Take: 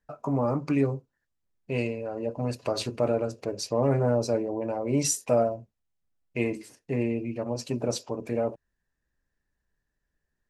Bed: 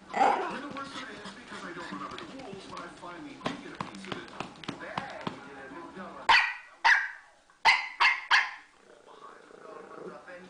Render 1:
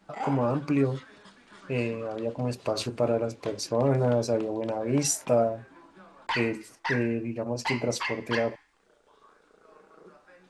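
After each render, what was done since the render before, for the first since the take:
mix in bed −9 dB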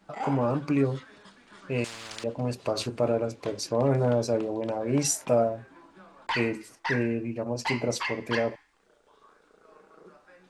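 0:01.84–0:02.24: every bin compressed towards the loudest bin 10 to 1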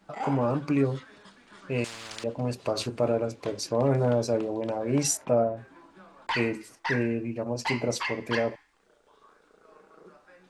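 0:05.17–0:05.57: low-pass filter 1,600 Hz 6 dB per octave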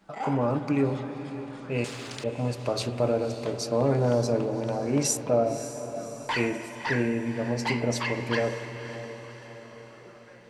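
feedback delay with all-pass diffusion 558 ms, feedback 53%, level −12.5 dB
spring reverb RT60 3.6 s, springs 41/47 ms, chirp 70 ms, DRR 9.5 dB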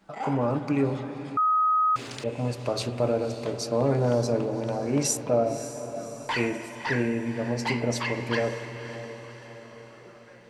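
0:01.37–0:01.96: beep over 1,260 Hz −19 dBFS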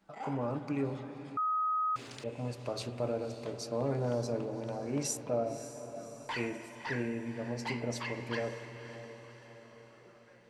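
level −9 dB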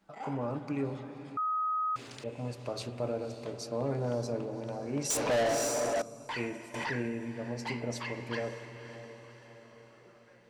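0:05.10–0:06.02: mid-hump overdrive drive 29 dB, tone 7,200 Hz, clips at −21.5 dBFS
0:06.74–0:07.28: background raised ahead of every attack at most 25 dB per second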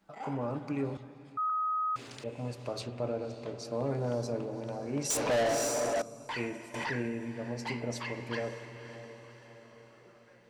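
0:00.97–0:01.50: multiband upward and downward expander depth 70%
0:02.81–0:03.65: high-frequency loss of the air 57 metres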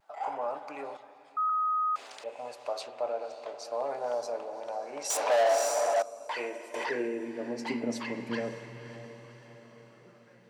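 high-pass filter sweep 710 Hz → 150 Hz, 0:05.99–0:08.75
pitch vibrato 0.34 Hz 13 cents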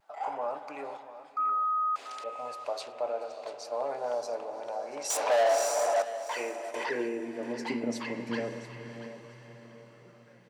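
repeating echo 686 ms, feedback 17%, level −14 dB

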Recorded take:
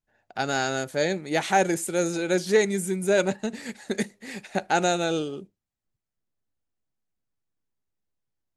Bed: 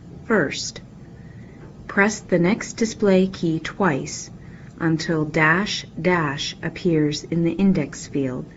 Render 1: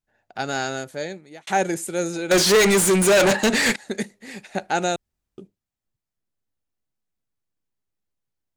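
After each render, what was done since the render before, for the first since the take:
0:00.66–0:01.47: fade out
0:02.31–0:03.76: mid-hump overdrive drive 33 dB, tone 6,800 Hz, clips at −9 dBFS
0:04.96–0:05.38: fill with room tone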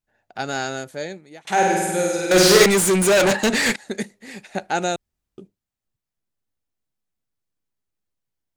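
0:01.40–0:02.66: flutter between parallel walls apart 8.4 metres, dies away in 1.4 s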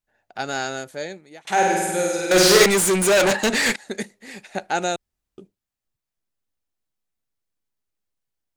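parametric band 130 Hz −4 dB 2.5 octaves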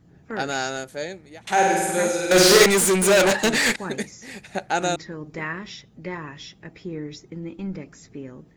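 mix in bed −13.5 dB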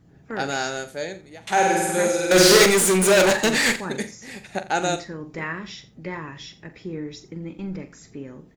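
double-tracking delay 43 ms −11.5 dB
single-tap delay 85 ms −17.5 dB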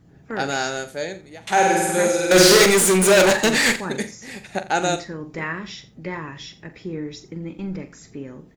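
level +2 dB
brickwall limiter −3 dBFS, peak gain reduction 2 dB

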